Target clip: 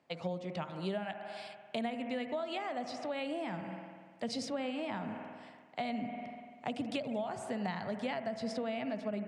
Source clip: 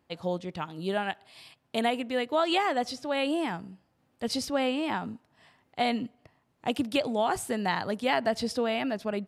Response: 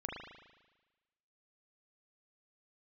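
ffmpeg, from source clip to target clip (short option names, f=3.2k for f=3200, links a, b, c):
-filter_complex "[0:a]highpass=f=120:w=0.5412,highpass=f=120:w=1.3066,equalizer=f=330:t=q:w=4:g=-4,equalizer=f=640:t=q:w=4:g=7,equalizer=f=2.2k:t=q:w=4:g=4,lowpass=f=8.5k:w=0.5412,lowpass=f=8.5k:w=1.3066,asplit=2[a][b];[1:a]atrim=start_sample=2205,asetrate=33957,aresample=44100[c];[b][c]afir=irnorm=-1:irlink=0,volume=-8dB[d];[a][d]amix=inputs=2:normalize=0,acrossover=split=200[e][f];[f]acompressor=threshold=-33dB:ratio=6[g];[e][g]amix=inputs=2:normalize=0,volume=-3.5dB"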